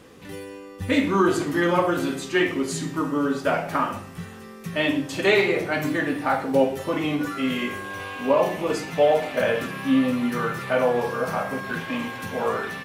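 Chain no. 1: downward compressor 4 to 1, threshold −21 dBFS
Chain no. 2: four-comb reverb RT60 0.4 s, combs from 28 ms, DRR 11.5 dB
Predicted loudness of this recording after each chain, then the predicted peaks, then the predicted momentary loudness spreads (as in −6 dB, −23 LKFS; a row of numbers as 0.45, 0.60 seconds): −26.5, −23.5 LKFS; −11.0, −6.5 dBFS; 7, 11 LU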